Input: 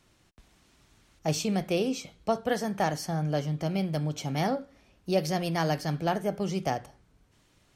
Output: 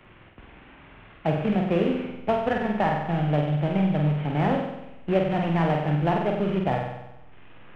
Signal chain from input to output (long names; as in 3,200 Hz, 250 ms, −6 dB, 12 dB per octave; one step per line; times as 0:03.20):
variable-slope delta modulation 16 kbit/s
in parallel at −4 dB: slack as between gear wheels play −26 dBFS
on the sum: flutter between parallel walls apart 8.1 metres, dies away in 0.77 s
multiband upward and downward compressor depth 40%